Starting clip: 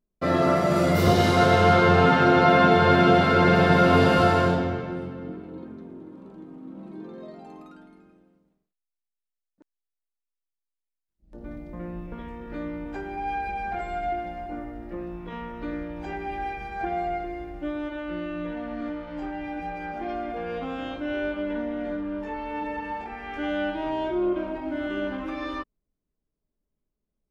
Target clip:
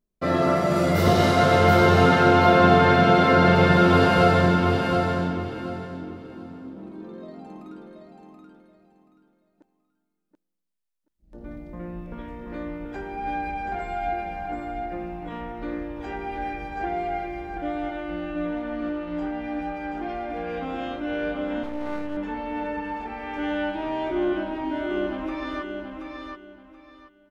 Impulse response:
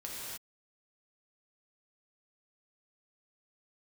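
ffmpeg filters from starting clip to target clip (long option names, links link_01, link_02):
-filter_complex "[0:a]asplit=2[link_01][link_02];[link_02]aecho=0:1:729|1458|2187:0.562|0.135|0.0324[link_03];[link_01][link_03]amix=inputs=2:normalize=0,asettb=1/sr,asplit=3[link_04][link_05][link_06];[link_04]atrim=end=21.634[link_07];[link_05]atrim=start=21.63:end=22.17,asetpts=PTS-STARTPTS,afade=type=in:duration=0.004:curve=qsin,afade=type=out:start_time=0.536:duration=0.004:curve=qsin,aeval=exprs='max(val(0),0)':channel_layout=same[link_08];[link_06]atrim=start=22.166[link_09];[link_07][link_08]acrossfade=duration=0.004:curve1=hsin:curve2=qsin[link_10];[link_10][link_09]acrossfade=duration=0.004:curve1=qsin:curve2=hsin"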